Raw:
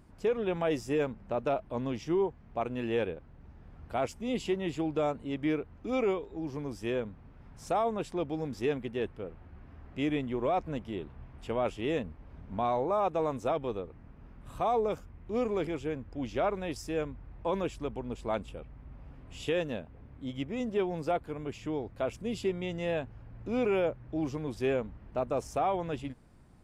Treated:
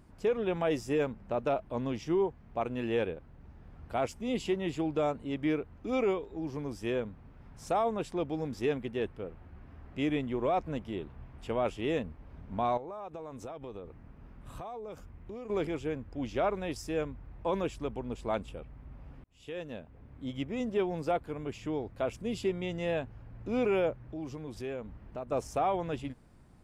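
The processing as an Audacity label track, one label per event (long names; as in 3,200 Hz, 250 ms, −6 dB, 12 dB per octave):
12.770000	15.500000	downward compressor 16 to 1, threshold −38 dBFS
19.240000	20.210000	fade in linear
23.970000	25.320000	downward compressor 2 to 1, threshold −41 dBFS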